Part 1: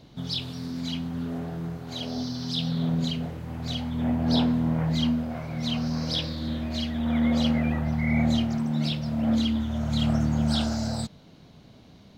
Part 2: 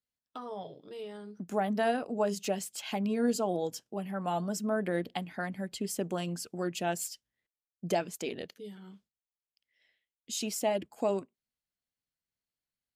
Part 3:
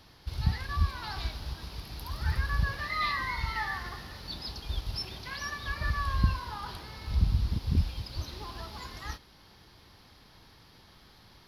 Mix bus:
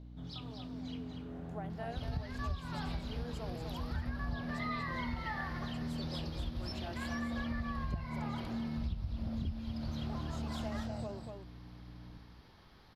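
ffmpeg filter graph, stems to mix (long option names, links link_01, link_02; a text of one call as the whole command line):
ffmpeg -i stem1.wav -i stem2.wav -i stem3.wav -filter_complex "[0:a]aeval=exprs='val(0)+0.0158*(sin(2*PI*60*n/s)+sin(2*PI*2*60*n/s)/2+sin(2*PI*3*60*n/s)/3+sin(2*PI*4*60*n/s)/4+sin(2*PI*5*60*n/s)/5)':channel_layout=same,volume=-12.5dB,asplit=2[link_01][link_02];[link_02]volume=-6dB[link_03];[1:a]lowshelf=frequency=320:gain=-10,volume=-12dB,asplit=2[link_04][link_05];[link_05]volume=-5.5dB[link_06];[2:a]adelay=1700,volume=-2dB[link_07];[link_03][link_06]amix=inputs=2:normalize=0,aecho=0:1:240:1[link_08];[link_01][link_04][link_07][link_08]amix=inputs=4:normalize=0,highshelf=frequency=3800:gain=-11.5,acompressor=threshold=-34dB:ratio=6" out.wav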